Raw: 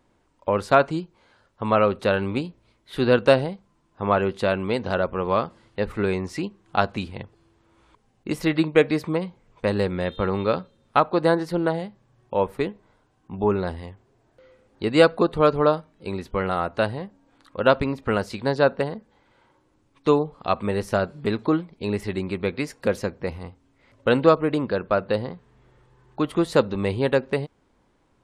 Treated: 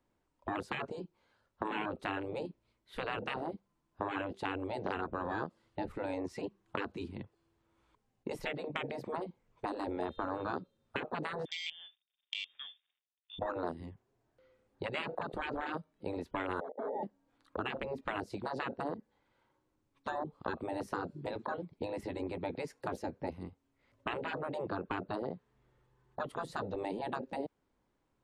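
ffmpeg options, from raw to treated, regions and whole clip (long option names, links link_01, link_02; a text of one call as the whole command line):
ffmpeg -i in.wav -filter_complex "[0:a]asettb=1/sr,asplit=3[link_01][link_02][link_03];[link_01]atrim=end=11.454[link_04];[link_02]atrim=start=11.45:end=13.39,asetpts=PTS-STARTPTS,afade=type=in:duration=0.004:curve=qsin,afade=type=out:start_time=1.936:duration=0.004:curve=qsin,acompressor=threshold=-27dB:ratio=2:attack=3.2:release=140:knee=1:detection=peak,aeval=exprs='sgn(val(0))*max(abs(val(0))-0.00133,0)':channel_layout=same,lowpass=frequency=3100:width_type=q:width=0.5098,lowpass=frequency=3100:width_type=q:width=0.6013,lowpass=frequency=3100:width_type=q:width=0.9,lowpass=frequency=3100:width_type=q:width=2.563,afreqshift=-3700[link_05];[link_03]atrim=start=13.386[link_06];[link_04][link_05]acrossfade=duration=0.004:curve1=hsin:curve2=qsin[link_07];[link_07][link_06]acrossfade=duration=0.004:curve1=qsin:curve2=hsin,asettb=1/sr,asplit=3[link_08][link_09][link_10];[link_08]atrim=end=16.604[link_11];[link_09]atrim=start=16.6:end=17.03,asetpts=PTS-STARTPTS,afade=type=in:duration=0.004:curve=qsin,afade=type=out:start_time=0.426:duration=0.004:curve=qsin,aemphasis=mode=reproduction:type=75kf,aeval=exprs='0.299*sin(PI/2*3.16*val(0)/0.299)':channel_layout=same,asuperpass=centerf=510:order=8:qfactor=2.9[link_12];[link_10]atrim=start=17.026[link_13];[link_11][link_12]acrossfade=duration=0.004:curve1=hsin:curve2=qsin[link_14];[link_14][link_13]acrossfade=duration=0.004:curve1=qsin:curve2=hsin,afwtdn=0.0398,afftfilt=real='re*lt(hypot(re,im),0.2)':imag='im*lt(hypot(re,im),0.2)':win_size=1024:overlap=0.75,acrossover=split=240|600|3600[link_15][link_16][link_17][link_18];[link_15]acompressor=threshold=-53dB:ratio=4[link_19];[link_16]acompressor=threshold=-40dB:ratio=4[link_20];[link_17]acompressor=threshold=-42dB:ratio=4[link_21];[link_18]acompressor=threshold=-56dB:ratio=4[link_22];[link_19][link_20][link_21][link_22]amix=inputs=4:normalize=0,volume=2.5dB" out.wav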